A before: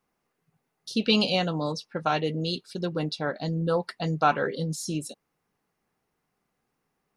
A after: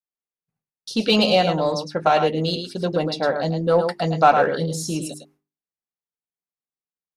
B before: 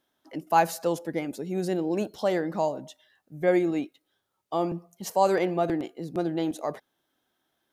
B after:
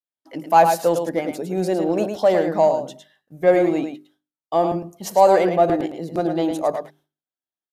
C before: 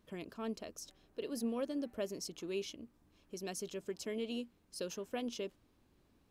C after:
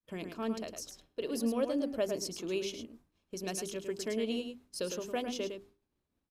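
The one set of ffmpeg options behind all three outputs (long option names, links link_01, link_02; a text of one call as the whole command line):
ffmpeg -i in.wav -filter_complex "[0:a]asplit=2[link_01][link_02];[link_02]aecho=0:1:107:0.422[link_03];[link_01][link_03]amix=inputs=2:normalize=0,aresample=32000,aresample=44100,asplit=2[link_04][link_05];[link_05]asoftclip=type=hard:threshold=-23dB,volume=-8.5dB[link_06];[link_04][link_06]amix=inputs=2:normalize=0,agate=range=-33dB:threshold=-54dB:ratio=3:detection=peak,bandreject=frequency=50:width_type=h:width=6,bandreject=frequency=100:width_type=h:width=6,bandreject=frequency=150:width_type=h:width=6,bandreject=frequency=200:width_type=h:width=6,bandreject=frequency=250:width_type=h:width=6,bandreject=frequency=300:width_type=h:width=6,bandreject=frequency=350:width_type=h:width=6,bandreject=frequency=400:width_type=h:width=6,adynamicequalizer=threshold=0.0141:dfrequency=650:dqfactor=1.6:tfrequency=650:tqfactor=1.6:attack=5:release=100:ratio=0.375:range=3.5:mode=boostabove:tftype=bell,volume=2dB" out.wav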